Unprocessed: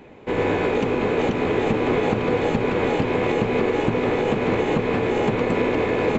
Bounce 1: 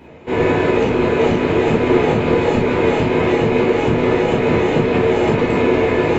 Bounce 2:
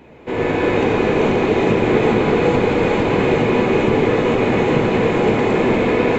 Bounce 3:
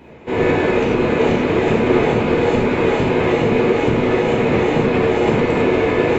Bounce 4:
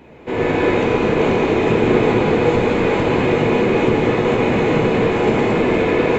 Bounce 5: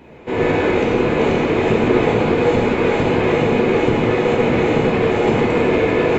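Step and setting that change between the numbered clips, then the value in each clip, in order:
reverb whose tail is shaped and stops, gate: 80, 490, 130, 330, 200 milliseconds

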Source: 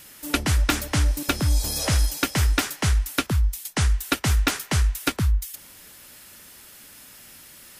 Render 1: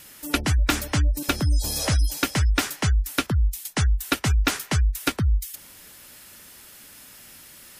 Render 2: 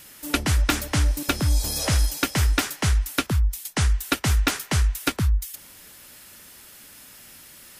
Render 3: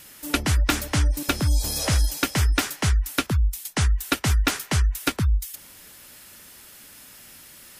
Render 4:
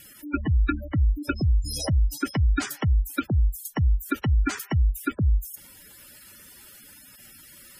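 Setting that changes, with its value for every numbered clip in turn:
gate on every frequency bin, under each frame's peak: −30, −55, −40, −10 decibels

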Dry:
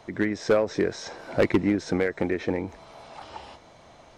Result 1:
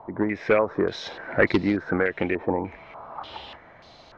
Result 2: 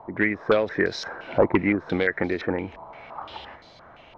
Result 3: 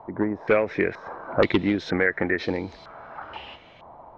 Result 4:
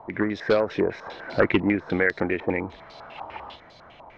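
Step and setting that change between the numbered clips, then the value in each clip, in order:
low-pass on a step sequencer, speed: 3.4, 5.8, 2.1, 10 Hertz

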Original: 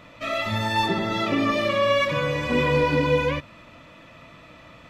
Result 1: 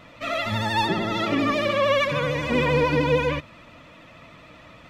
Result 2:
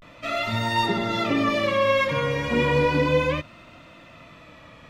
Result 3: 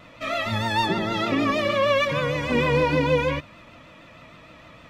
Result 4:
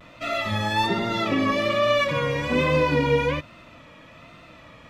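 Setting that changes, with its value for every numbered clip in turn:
pitch vibrato, speed: 13, 0.34, 6.5, 1.2 Hertz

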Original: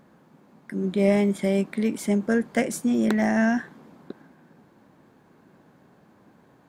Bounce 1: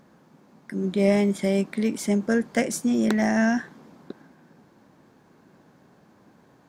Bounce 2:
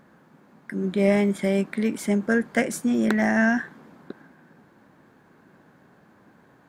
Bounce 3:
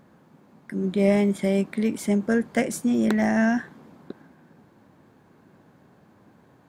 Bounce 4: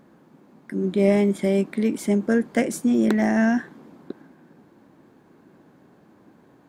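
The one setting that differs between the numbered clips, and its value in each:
parametric band, centre frequency: 5,600, 1,600, 94, 320 Hertz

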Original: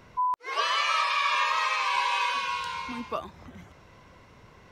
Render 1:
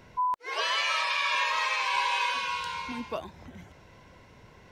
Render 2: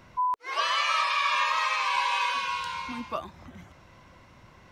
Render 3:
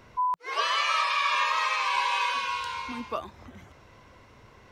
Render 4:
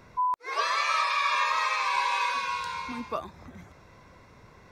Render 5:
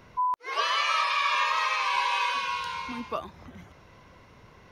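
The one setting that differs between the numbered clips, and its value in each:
notch filter, centre frequency: 1,200, 440, 170, 3,000, 7,700 Hertz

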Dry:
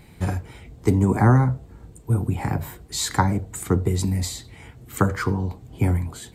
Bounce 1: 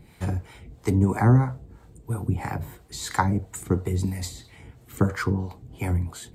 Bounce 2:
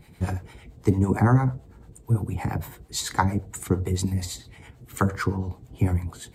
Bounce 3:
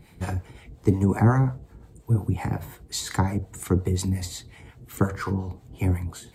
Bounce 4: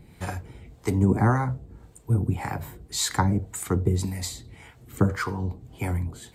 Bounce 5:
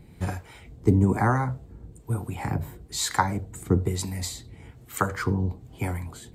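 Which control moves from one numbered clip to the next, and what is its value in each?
two-band tremolo in antiphase, speed: 3, 8.9, 5.6, 1.8, 1.1 Hertz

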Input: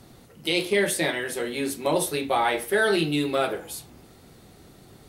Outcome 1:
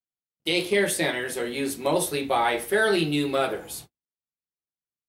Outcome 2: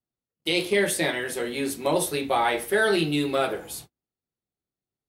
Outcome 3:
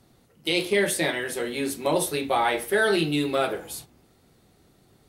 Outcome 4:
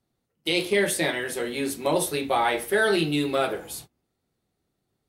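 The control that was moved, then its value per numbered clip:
noise gate, range: −58, −43, −9, −27 decibels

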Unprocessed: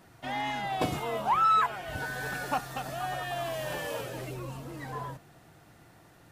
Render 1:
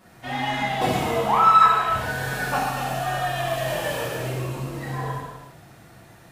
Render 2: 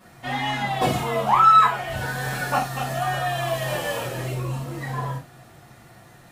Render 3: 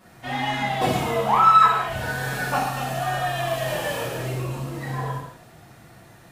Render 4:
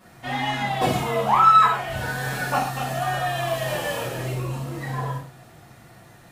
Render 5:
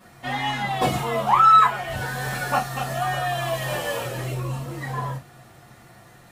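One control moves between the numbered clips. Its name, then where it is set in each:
reverb whose tail is shaped and stops, gate: 450, 120, 290, 180, 80 milliseconds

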